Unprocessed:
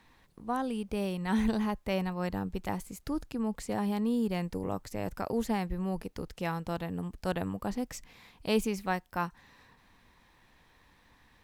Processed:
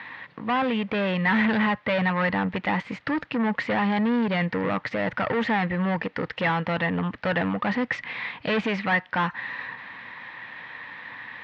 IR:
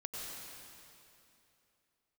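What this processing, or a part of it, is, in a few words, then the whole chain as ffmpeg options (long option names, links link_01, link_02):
overdrive pedal into a guitar cabinet: -filter_complex "[0:a]asplit=2[link_01][link_02];[link_02]highpass=frequency=720:poles=1,volume=30dB,asoftclip=type=tanh:threshold=-14.5dB[link_03];[link_01][link_03]amix=inputs=2:normalize=0,lowpass=frequency=3200:poles=1,volume=-6dB,highpass=100,equalizer=frequency=120:width_type=q:width=4:gain=7,equalizer=frequency=380:width_type=q:width=4:gain=-9,equalizer=frequency=710:width_type=q:width=4:gain=-4,equalizer=frequency=1900:width_type=q:width=4:gain=8,lowpass=frequency=3500:width=0.5412,lowpass=frequency=3500:width=1.3066"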